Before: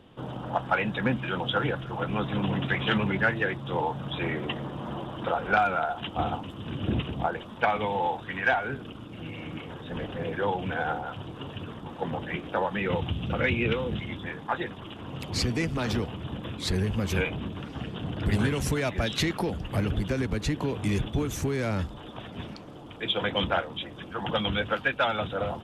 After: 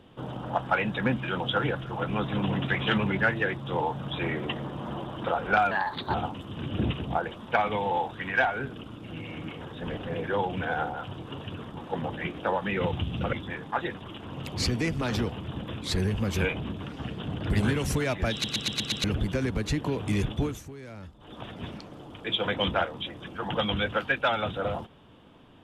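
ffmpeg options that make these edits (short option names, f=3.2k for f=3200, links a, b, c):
-filter_complex "[0:a]asplit=12[a][b][c][d][e][f][g][h][i][j][k][l];[a]atrim=end=5.714[m];[b]atrim=start=5.71:end=6.23,asetpts=PTS-STARTPTS,asetrate=53361,aresample=44100,atrim=end_sample=18952,asetpts=PTS-STARTPTS[n];[c]atrim=start=6.226:end=13.422[o];[d]atrim=start=14.088:end=19.202[p];[e]atrim=start=19.078:end=19.202[q];[f]atrim=start=19.078:end=19.202[r];[g]atrim=start=19.078:end=19.202[s];[h]atrim=start=19.078:end=19.202[t];[i]atrim=start=19.078:end=19.202[u];[j]atrim=start=19.798:end=21.39,asetpts=PTS-STARTPTS,afade=t=out:st=1.392:d=0.2:silence=0.188365[v];[k]atrim=start=21.39:end=21.94,asetpts=PTS-STARTPTS,volume=-14.5dB[w];[l]atrim=start=21.94,asetpts=PTS-STARTPTS,afade=t=in:d=0.2:silence=0.188365[x];[m][n]acrossfade=d=0.004:c1=hsin:c2=hsin[y];[y][o]acrossfade=d=0.004:c1=hsin:c2=hsin[z];[z][p]acrossfade=d=0.004:c1=hsin:c2=hsin[aa];[aa][q]acrossfade=d=0.004:c1=hsin:c2=hsin[ab];[ab][r]acrossfade=d=0.004:c1=hsin:c2=hsin[ac];[ac][s]acrossfade=d=0.004:c1=hsin:c2=hsin[ad];[ad][t]acrossfade=d=0.004:c1=hsin:c2=hsin[ae];[ae][u]acrossfade=d=0.004:c1=hsin:c2=hsin[af];[v][w][x]concat=n=3:v=0:a=1[ag];[af][ag]acrossfade=d=0.004:c1=hsin:c2=hsin"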